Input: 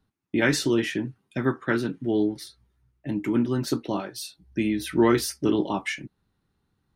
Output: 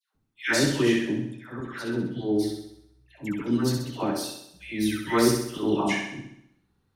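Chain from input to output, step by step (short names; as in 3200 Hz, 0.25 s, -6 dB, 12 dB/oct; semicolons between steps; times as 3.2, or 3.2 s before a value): auto swell 0.133 s; dispersion lows, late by 0.148 s, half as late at 1100 Hz; on a send: flutter echo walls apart 11.1 m, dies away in 0.74 s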